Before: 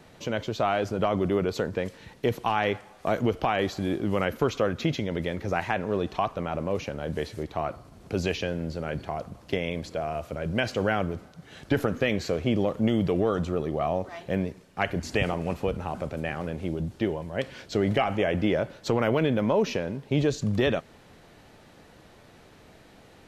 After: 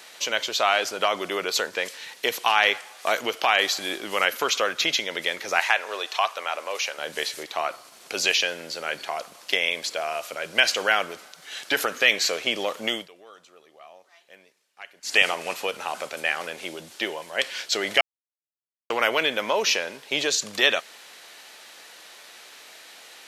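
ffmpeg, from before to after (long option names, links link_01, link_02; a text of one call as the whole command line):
ffmpeg -i in.wav -filter_complex "[0:a]asettb=1/sr,asplit=3[link_01][link_02][link_03];[link_01]atrim=end=5.604[link_04];[link_02]atrim=start=5.6:end=6.98,asetpts=PTS-STARTPTS,afade=type=in:duration=0.004:curve=qsin,afade=type=out:start_time=1.376:duration=0.004:curve=qsin,highpass=500[link_05];[link_03]atrim=start=6.976[link_06];[link_04][link_05]acrossfade=duration=0.004:curve1=hsin:curve2=qsin[link_07];[link_07][link_06]acrossfade=duration=0.004:curve1=qsin:curve2=hsin,asplit=5[link_08][link_09][link_10][link_11][link_12];[link_08]atrim=end=13.08,asetpts=PTS-STARTPTS,afade=type=out:start_time=12.93:duration=0.15:silence=0.0749894[link_13];[link_09]atrim=start=13.08:end=15.02,asetpts=PTS-STARTPTS,volume=-22.5dB[link_14];[link_10]atrim=start=15.02:end=18.01,asetpts=PTS-STARTPTS,afade=type=in:duration=0.15:silence=0.0749894,afade=type=out:start_time=2.986:duration=0.004:curve=hsin[link_15];[link_11]atrim=start=18.01:end=18.9,asetpts=PTS-STARTPTS,volume=0[link_16];[link_12]atrim=start=18.9,asetpts=PTS-STARTPTS,afade=type=in:duration=0.004:curve=hsin[link_17];[link_13][link_14][link_15][link_16][link_17]concat=n=5:v=0:a=1,highpass=450,tiltshelf=frequency=1300:gain=-9.5,volume=7.5dB" out.wav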